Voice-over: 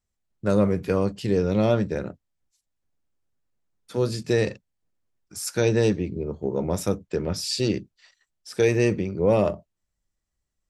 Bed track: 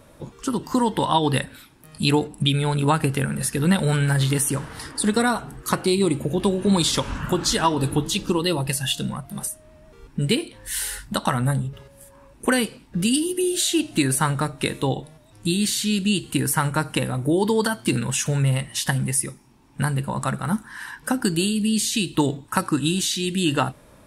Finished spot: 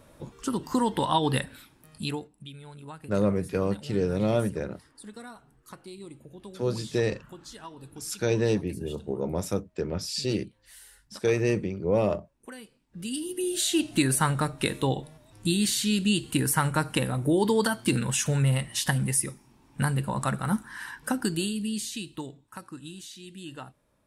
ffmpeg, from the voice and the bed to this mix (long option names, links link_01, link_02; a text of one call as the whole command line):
ffmpeg -i stem1.wav -i stem2.wav -filter_complex "[0:a]adelay=2650,volume=-4dB[link_01];[1:a]volume=16dB,afade=type=out:start_time=1.68:duration=0.63:silence=0.112202,afade=type=in:start_time=12.86:duration=0.97:silence=0.0944061,afade=type=out:start_time=20.74:duration=1.59:silence=0.141254[link_02];[link_01][link_02]amix=inputs=2:normalize=0" out.wav